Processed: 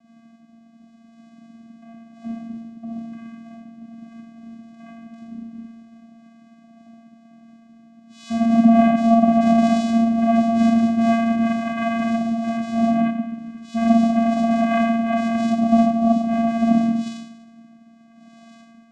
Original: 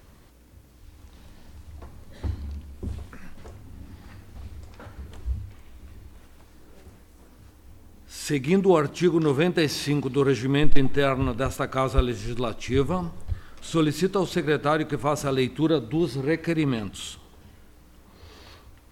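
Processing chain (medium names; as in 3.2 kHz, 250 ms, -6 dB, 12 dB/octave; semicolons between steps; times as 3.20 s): algorithmic reverb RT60 0.98 s, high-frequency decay 0.7×, pre-delay 5 ms, DRR -6.5 dB; vocoder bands 4, square 229 Hz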